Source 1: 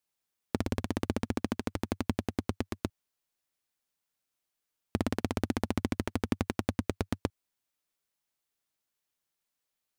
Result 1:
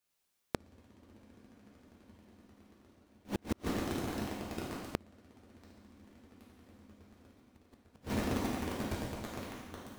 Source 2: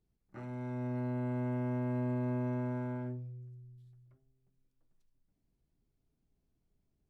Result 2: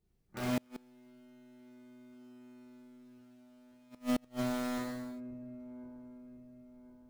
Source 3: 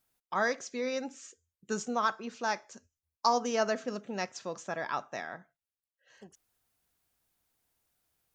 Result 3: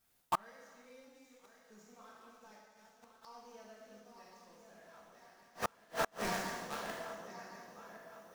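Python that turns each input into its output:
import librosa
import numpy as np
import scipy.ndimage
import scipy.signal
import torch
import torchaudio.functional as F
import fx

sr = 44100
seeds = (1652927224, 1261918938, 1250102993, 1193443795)

p1 = fx.reverse_delay_fb(x, sr, ms=531, feedback_pct=62, wet_db=-8.0)
p2 = fx.echo_bbd(p1, sr, ms=64, stages=2048, feedback_pct=44, wet_db=-24)
p3 = fx.quant_companded(p2, sr, bits=2)
p4 = p2 + (p3 * 10.0 ** (-7.0 / 20.0))
p5 = fx.rev_gated(p4, sr, seeds[0], gate_ms=440, shape='falling', drr_db=-6.0)
p6 = fx.gate_flip(p5, sr, shuts_db=-19.0, range_db=-35)
y = p6 * 10.0 ** (-1.5 / 20.0)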